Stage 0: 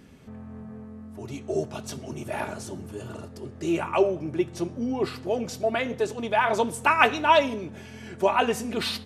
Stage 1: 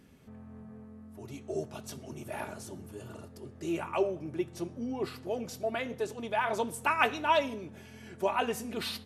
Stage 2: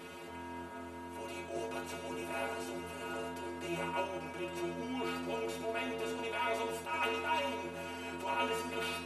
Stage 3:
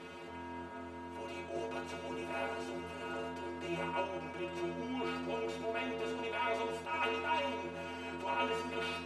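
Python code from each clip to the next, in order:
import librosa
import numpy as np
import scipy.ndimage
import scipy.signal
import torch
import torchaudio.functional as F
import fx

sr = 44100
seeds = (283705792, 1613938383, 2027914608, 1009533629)

y1 = fx.peak_eq(x, sr, hz=12000.0, db=7.0, octaves=0.5)
y1 = y1 * librosa.db_to_amplitude(-7.5)
y2 = fx.bin_compress(y1, sr, power=0.4)
y2 = fx.stiff_resonator(y2, sr, f0_hz=82.0, decay_s=0.58, stiffness=0.008)
y2 = fx.attack_slew(y2, sr, db_per_s=110.0)
y3 = fx.air_absorb(y2, sr, metres=69.0)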